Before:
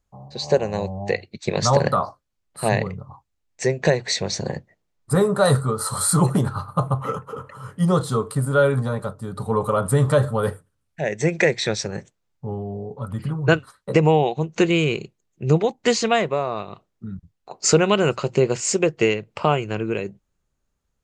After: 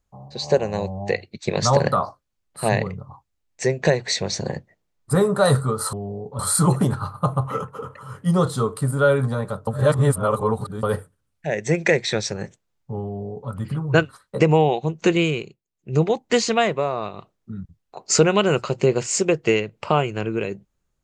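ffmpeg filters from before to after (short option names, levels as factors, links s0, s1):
-filter_complex "[0:a]asplit=7[s0][s1][s2][s3][s4][s5][s6];[s0]atrim=end=5.932[s7];[s1]atrim=start=12.578:end=13.042[s8];[s2]atrim=start=5.928:end=9.212[s9];[s3]atrim=start=9.208:end=10.372,asetpts=PTS-STARTPTS,areverse[s10];[s4]atrim=start=10.368:end=15.1,asetpts=PTS-STARTPTS,afade=t=out:st=4.372:d=0.36:silence=0.177828[s11];[s5]atrim=start=15.1:end=15.24,asetpts=PTS-STARTPTS,volume=0.178[s12];[s6]atrim=start=15.24,asetpts=PTS-STARTPTS,afade=t=in:d=0.36:silence=0.177828[s13];[s7][s8]acrossfade=d=0.004:c1=hsin:c2=hsin[s14];[s14][s9]acrossfade=d=0.004:c1=hsin:c2=hsin[s15];[s15][s10]acrossfade=d=0.004:c1=hsin:c2=hsin[s16];[s11][s12][s13]concat=n=3:v=0:a=1[s17];[s16][s17]acrossfade=d=0.004:c1=hsin:c2=hsin"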